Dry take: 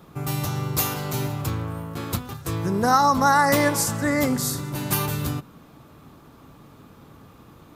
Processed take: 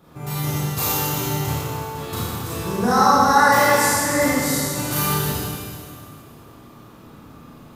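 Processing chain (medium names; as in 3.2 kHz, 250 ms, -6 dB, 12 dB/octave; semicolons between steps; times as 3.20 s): Schroeder reverb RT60 2.2 s, combs from 26 ms, DRR -9.5 dB; trim -5.5 dB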